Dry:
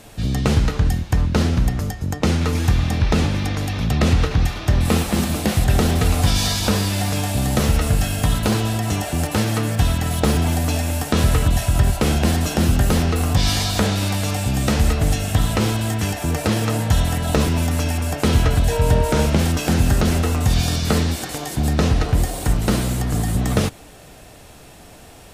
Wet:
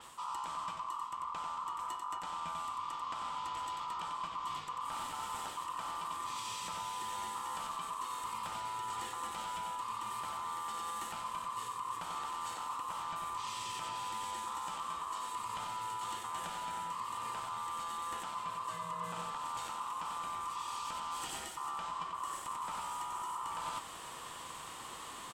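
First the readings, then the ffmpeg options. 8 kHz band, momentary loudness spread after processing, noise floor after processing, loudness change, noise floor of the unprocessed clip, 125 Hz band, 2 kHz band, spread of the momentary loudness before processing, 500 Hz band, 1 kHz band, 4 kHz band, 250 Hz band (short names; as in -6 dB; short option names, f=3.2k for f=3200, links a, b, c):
-18.5 dB, 1 LU, -47 dBFS, -20.0 dB, -43 dBFS, under -40 dB, -20.0 dB, 4 LU, -29.0 dB, -7.0 dB, -19.0 dB, -36.0 dB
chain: -af "flanger=delay=7.6:depth=4.5:regen=-58:speed=1:shape=triangular,aeval=exprs='val(0)*sin(2*PI*1100*n/s)':c=same,alimiter=limit=-20dB:level=0:latency=1:release=288,equalizer=f=160:t=o:w=0.33:g=5,equalizer=f=400:t=o:w=0.33:g=-6,equalizer=f=630:t=o:w=0.33:g=-4,equalizer=f=1k:t=o:w=0.33:g=4,equalizer=f=1.6k:t=o:w=0.33:g=-7,equalizer=f=3.15k:t=o:w=0.33:g=8,equalizer=f=8k:t=o:w=0.33:g=12,aecho=1:1:93:0.596,areverse,acompressor=threshold=-38dB:ratio=16,areverse,adynamicequalizer=threshold=0.00158:dfrequency=5200:dqfactor=0.7:tfrequency=5200:tqfactor=0.7:attack=5:release=100:ratio=0.375:range=2:mode=cutabove:tftype=highshelf,volume=1.5dB"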